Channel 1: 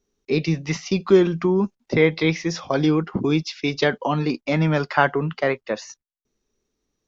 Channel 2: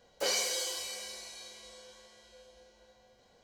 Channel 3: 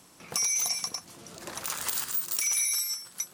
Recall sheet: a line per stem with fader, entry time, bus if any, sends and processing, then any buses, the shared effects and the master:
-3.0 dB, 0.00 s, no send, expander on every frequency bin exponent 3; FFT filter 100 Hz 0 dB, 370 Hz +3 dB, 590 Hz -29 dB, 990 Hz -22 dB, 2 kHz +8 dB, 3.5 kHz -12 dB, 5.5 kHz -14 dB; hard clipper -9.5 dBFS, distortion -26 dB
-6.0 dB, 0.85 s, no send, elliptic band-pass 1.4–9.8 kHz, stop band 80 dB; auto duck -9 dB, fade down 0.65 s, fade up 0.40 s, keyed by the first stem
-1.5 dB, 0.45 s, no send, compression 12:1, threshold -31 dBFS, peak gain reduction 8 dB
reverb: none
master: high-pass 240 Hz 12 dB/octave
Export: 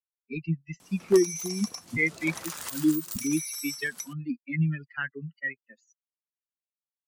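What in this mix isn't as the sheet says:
stem 2: muted; stem 3: entry 0.45 s -> 0.80 s; master: missing high-pass 240 Hz 12 dB/octave

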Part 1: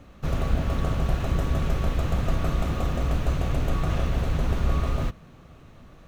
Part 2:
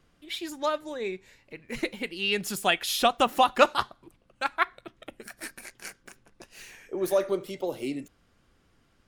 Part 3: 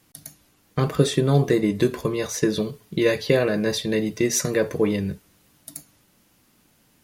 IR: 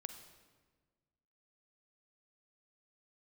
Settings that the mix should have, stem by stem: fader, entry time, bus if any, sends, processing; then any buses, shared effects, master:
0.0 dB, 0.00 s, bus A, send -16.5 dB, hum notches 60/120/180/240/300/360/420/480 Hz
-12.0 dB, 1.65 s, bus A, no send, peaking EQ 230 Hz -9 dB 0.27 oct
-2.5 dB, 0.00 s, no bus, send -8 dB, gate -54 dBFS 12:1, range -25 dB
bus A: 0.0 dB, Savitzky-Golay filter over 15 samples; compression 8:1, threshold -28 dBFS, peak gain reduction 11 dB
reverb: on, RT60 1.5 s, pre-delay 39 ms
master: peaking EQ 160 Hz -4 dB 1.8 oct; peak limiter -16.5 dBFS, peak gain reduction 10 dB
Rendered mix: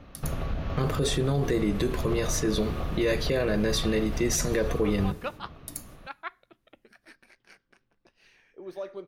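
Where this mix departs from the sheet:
stem 2: missing peaking EQ 230 Hz -9 dB 0.27 oct; master: missing peaking EQ 160 Hz -4 dB 1.8 oct

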